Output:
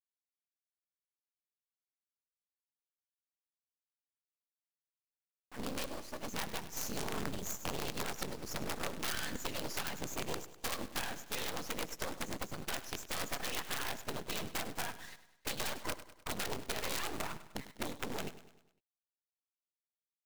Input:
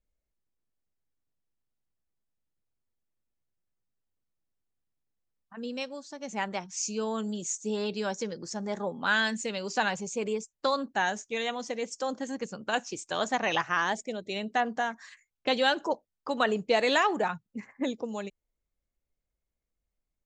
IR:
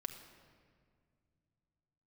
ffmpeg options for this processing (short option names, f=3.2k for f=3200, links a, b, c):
-af "lowpass=7.3k,bandreject=f=680:w=13,afftfilt=real='hypot(re,im)*cos(2*PI*random(0))':imag='hypot(re,im)*sin(2*PI*random(1))':win_size=512:overlap=0.75,acompressor=threshold=-38dB:ratio=10,acrusher=bits=7:dc=4:mix=0:aa=0.000001,aeval=exprs='(mod(50.1*val(0)+1,2)-1)/50.1':c=same,acrusher=bits=2:mode=log:mix=0:aa=0.000001,aecho=1:1:101|202|303|404|505:0.188|0.0942|0.0471|0.0235|0.0118,volume=6dB"